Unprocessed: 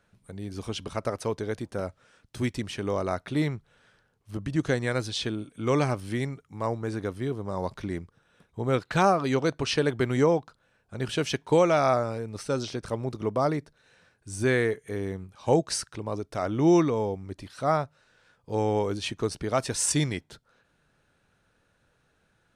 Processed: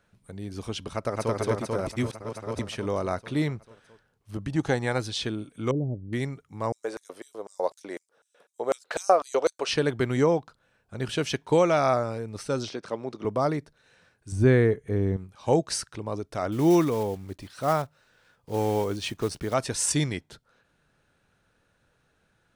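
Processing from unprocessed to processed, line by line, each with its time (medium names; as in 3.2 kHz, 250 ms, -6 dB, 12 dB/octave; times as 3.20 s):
0.94–1.35 s: echo throw 220 ms, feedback 75%, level 0 dB
1.87–2.59 s: reverse
4.50–4.98 s: peaking EQ 820 Hz +14.5 dB 0.24 oct
5.71–6.13 s: Gaussian low-pass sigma 20 samples
6.72–9.69 s: LFO high-pass square 4 Hz 530–7300 Hz
12.69–13.25 s: band-pass 240–6100 Hz
14.32–15.17 s: tilt EQ -3 dB/octave
16.52–19.55 s: block-companded coder 5-bit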